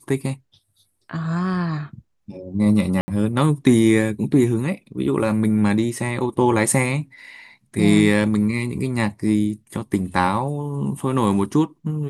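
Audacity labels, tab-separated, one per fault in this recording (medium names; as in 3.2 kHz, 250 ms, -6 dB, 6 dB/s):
3.010000	3.080000	dropout 70 ms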